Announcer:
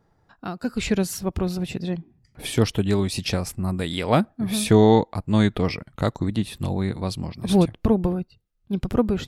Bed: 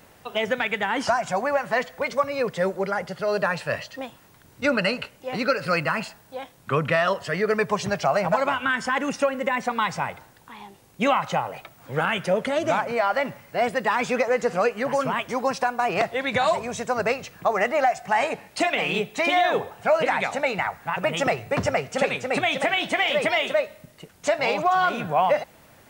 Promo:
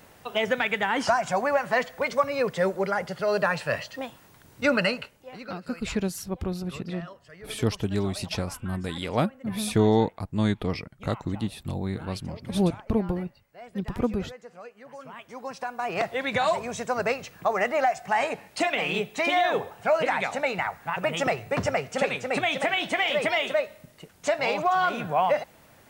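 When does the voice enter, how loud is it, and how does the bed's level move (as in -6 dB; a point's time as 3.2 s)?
5.05 s, -5.5 dB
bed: 4.84 s -0.5 dB
5.68 s -22 dB
14.82 s -22 dB
16.11 s -2.5 dB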